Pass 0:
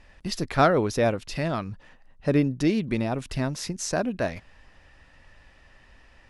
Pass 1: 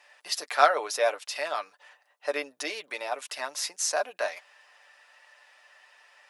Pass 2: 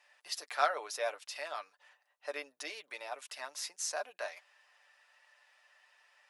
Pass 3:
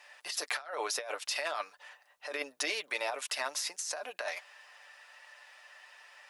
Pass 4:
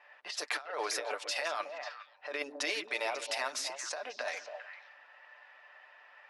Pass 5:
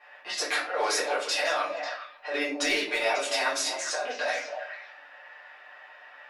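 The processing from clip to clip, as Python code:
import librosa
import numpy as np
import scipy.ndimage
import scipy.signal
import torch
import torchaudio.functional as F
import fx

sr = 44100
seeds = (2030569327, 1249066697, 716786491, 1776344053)

y1 = scipy.signal.sosfilt(scipy.signal.butter(4, 600.0, 'highpass', fs=sr, output='sos'), x)
y1 = fx.high_shelf(y1, sr, hz=8400.0, db=8.0)
y1 = y1 + 0.51 * np.pad(y1, (int(6.8 * sr / 1000.0), 0))[:len(y1)]
y2 = fx.low_shelf(y1, sr, hz=380.0, db=-7.5)
y2 = y2 * librosa.db_to_amplitude(-8.5)
y3 = fx.over_compress(y2, sr, threshold_db=-43.0, ratio=-1.0)
y3 = y3 * librosa.db_to_amplitude(6.5)
y4 = fx.high_shelf(y3, sr, hz=10000.0, db=-6.0)
y4 = fx.echo_stepped(y4, sr, ms=136, hz=250.0, octaves=1.4, feedback_pct=70, wet_db=-2.0)
y4 = fx.env_lowpass(y4, sr, base_hz=1800.0, full_db=-31.0)
y5 = fx.clip_asym(y4, sr, top_db=-24.0, bottom_db=-22.5)
y5 = fx.room_shoebox(y5, sr, seeds[0], volume_m3=30.0, walls='mixed', distance_m=1.4)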